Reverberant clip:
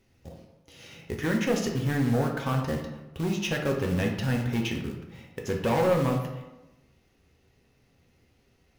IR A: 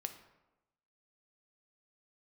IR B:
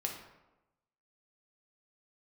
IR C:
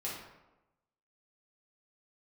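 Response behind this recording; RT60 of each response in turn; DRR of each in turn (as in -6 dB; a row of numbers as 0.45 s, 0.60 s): B; 1.0 s, 1.0 s, 1.0 s; 7.0 dB, 0.5 dB, -7.0 dB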